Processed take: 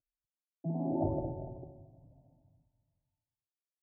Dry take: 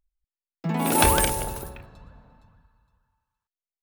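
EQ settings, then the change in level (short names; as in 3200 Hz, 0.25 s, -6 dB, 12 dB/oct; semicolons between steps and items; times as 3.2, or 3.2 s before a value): HPF 52 Hz; elliptic low-pass 660 Hz, stop band 70 dB; fixed phaser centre 310 Hz, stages 8; -4.5 dB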